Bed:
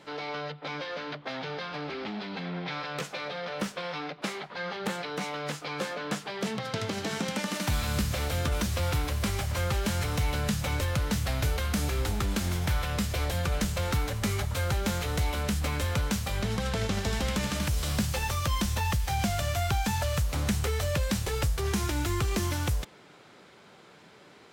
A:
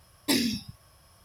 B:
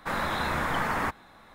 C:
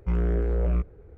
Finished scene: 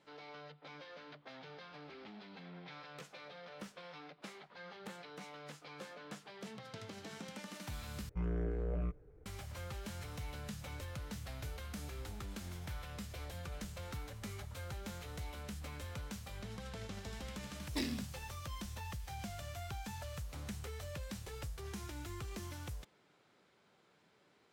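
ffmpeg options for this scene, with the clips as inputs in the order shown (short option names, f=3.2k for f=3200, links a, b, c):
-filter_complex "[0:a]volume=-16.5dB[a];[3:a]aecho=1:1:6.7:0.37[b];[1:a]adynamicsmooth=sensitivity=4:basefreq=1.5k[c];[a]asplit=2[d][e];[d]atrim=end=8.094[f];[b]atrim=end=1.17,asetpts=PTS-STARTPTS,volume=-11dB[g];[e]atrim=start=9.256[h];[c]atrim=end=1.24,asetpts=PTS-STARTPTS,volume=-12dB,afade=t=in:d=0.004:c=hsin,afade=t=out:st=1.236:d=0.004:c=hsin,adelay=17470[i];[f][g]acrossfade=d=0.004:c1=hsin:c2=hsin[j];[j][h]acrossfade=d=0.004:c1=hsin:c2=hsin[k];[k][i]amix=inputs=2:normalize=0"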